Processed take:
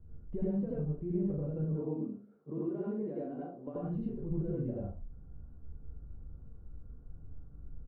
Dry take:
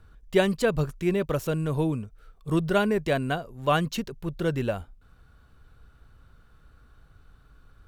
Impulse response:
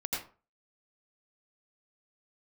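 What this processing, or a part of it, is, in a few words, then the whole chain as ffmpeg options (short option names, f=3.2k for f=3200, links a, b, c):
television next door: -filter_complex "[0:a]asettb=1/sr,asplit=3[a][b][c];[a]atrim=end=1.644[d];[b]atrim=start=1.64:end=3.76,asetpts=PTS-STARTPTS,afade=t=in:d=0.004:c=qsin,afade=t=out:st=2.116:d=0.004:c=qsin,highpass=f=220:w=0.5412,highpass=f=220:w=1.3066[e];[c]atrim=start=3.756[f];[d][e]acrossfade=d=0.004:c1=hsin:c2=qsin[g];[g][f]acrossfade=d=0.004:c1=qsin:c2=hsin,aecho=1:1:14|40:0.531|0.631,acompressor=threshold=-33dB:ratio=6,lowpass=340[h];[1:a]atrim=start_sample=2205[i];[h][i]afir=irnorm=-1:irlink=0"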